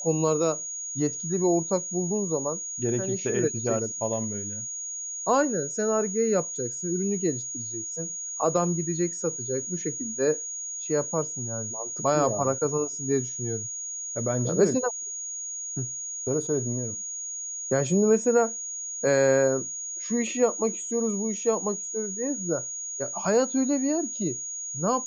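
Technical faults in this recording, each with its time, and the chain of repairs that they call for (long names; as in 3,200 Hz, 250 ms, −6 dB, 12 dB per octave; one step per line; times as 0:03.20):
whistle 6,700 Hz −32 dBFS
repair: notch filter 6,700 Hz, Q 30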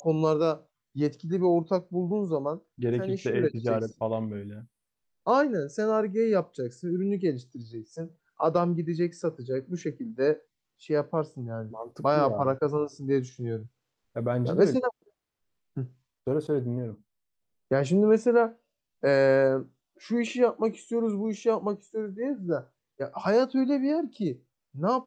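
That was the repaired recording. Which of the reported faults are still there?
none of them is left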